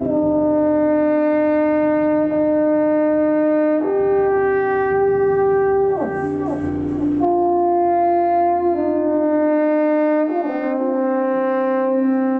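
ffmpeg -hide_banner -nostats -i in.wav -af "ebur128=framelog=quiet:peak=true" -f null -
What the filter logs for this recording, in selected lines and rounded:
Integrated loudness:
  I:         -17.6 LUFS
  Threshold: -27.5 LUFS
Loudness range:
  LRA:         1.4 LU
  Threshold: -37.5 LUFS
  LRA low:   -18.3 LUFS
  LRA high:  -16.8 LUFS
True peak:
  Peak:       -8.4 dBFS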